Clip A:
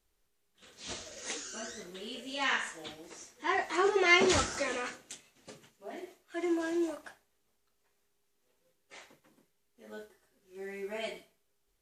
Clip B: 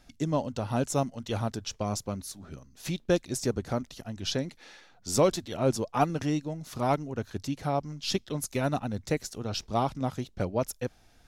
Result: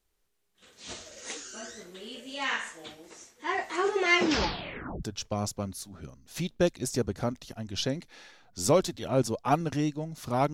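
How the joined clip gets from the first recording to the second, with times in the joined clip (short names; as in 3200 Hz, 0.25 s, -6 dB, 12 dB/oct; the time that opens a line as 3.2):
clip A
4.15 tape stop 0.88 s
5.03 switch to clip B from 1.52 s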